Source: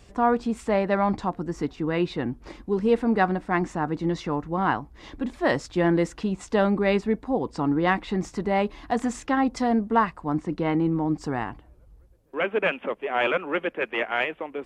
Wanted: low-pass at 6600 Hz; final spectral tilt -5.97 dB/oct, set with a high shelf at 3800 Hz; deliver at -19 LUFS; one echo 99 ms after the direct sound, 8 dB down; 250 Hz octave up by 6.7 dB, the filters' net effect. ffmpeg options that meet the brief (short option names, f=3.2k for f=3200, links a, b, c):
-af "lowpass=6.6k,equalizer=f=250:t=o:g=8.5,highshelf=f=3.8k:g=5.5,aecho=1:1:99:0.398,volume=2dB"